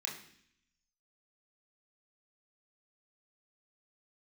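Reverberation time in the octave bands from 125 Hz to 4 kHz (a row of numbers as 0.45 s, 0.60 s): 0.95 s, 0.90 s, 0.65 s, 0.60 s, 0.80 s, 0.80 s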